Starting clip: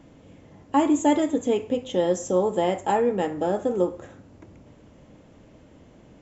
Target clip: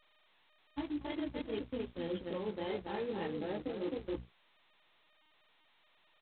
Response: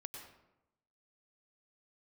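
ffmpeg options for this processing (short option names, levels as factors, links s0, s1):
-filter_complex "[0:a]flanger=delay=17.5:depth=2.6:speed=2.5,afftfilt=real='re*gte(hypot(re,im),0.02)':imag='im*gte(hypot(re,im),0.02)':win_size=1024:overlap=0.75,asplit=2[s0][s1];[s1]adelay=267,lowpass=f=2400:p=1,volume=0.562,asplit=2[s2][s3];[s3]adelay=267,lowpass=f=2400:p=1,volume=0.15,asplit=2[s4][s5];[s5]adelay=267,lowpass=f=2400:p=1,volume=0.15[s6];[s2][s4][s6]amix=inputs=3:normalize=0[s7];[s0][s7]amix=inputs=2:normalize=0,dynaudnorm=f=420:g=7:m=4.47,aeval=exprs='val(0)+0.0355*(sin(2*PI*60*n/s)+sin(2*PI*2*60*n/s)/2+sin(2*PI*3*60*n/s)/3+sin(2*PI*4*60*n/s)/4+sin(2*PI*5*60*n/s)/5)':c=same,agate=range=0.0398:threshold=0.1:ratio=16:detection=peak,equalizer=f=710:w=1.1:g=-10.5,bandreject=f=60:t=h:w=6,bandreject=f=120:t=h:w=6,bandreject=f=180:t=h:w=6,bandreject=f=240:t=h:w=6,areverse,acompressor=threshold=0.0398:ratio=16,areverse,aeval=exprs='sgn(val(0))*max(abs(val(0))-0.00282,0)':c=same,volume=0.501" -ar 8000 -c:a adpcm_g726 -b:a 16k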